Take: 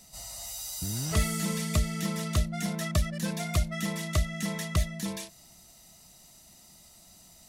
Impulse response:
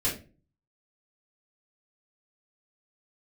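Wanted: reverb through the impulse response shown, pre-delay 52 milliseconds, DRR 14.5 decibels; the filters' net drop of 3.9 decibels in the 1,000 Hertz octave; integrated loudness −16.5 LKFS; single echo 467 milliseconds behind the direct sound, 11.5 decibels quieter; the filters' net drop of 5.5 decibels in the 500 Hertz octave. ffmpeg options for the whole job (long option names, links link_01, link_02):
-filter_complex "[0:a]equalizer=frequency=500:width_type=o:gain=-6,equalizer=frequency=1000:width_type=o:gain=-4,aecho=1:1:467:0.266,asplit=2[link_01][link_02];[1:a]atrim=start_sample=2205,adelay=52[link_03];[link_02][link_03]afir=irnorm=-1:irlink=0,volume=-22.5dB[link_04];[link_01][link_04]amix=inputs=2:normalize=0,volume=14.5dB"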